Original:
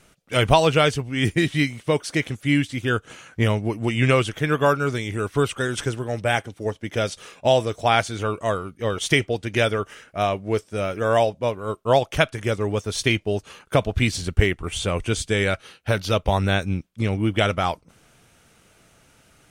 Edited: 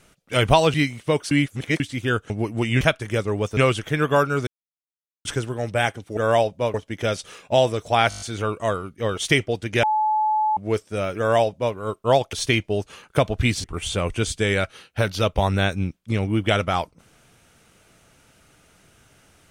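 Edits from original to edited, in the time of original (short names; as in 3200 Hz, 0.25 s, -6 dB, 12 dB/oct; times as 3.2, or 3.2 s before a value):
0.74–1.54 cut
2.11–2.6 reverse
3.1–3.56 cut
4.97–5.75 mute
8.02 stutter 0.02 s, 7 plays
9.64–10.38 bleep 860 Hz -17.5 dBFS
10.99–11.56 copy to 6.67
12.14–12.9 move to 4.07
14.21–14.54 cut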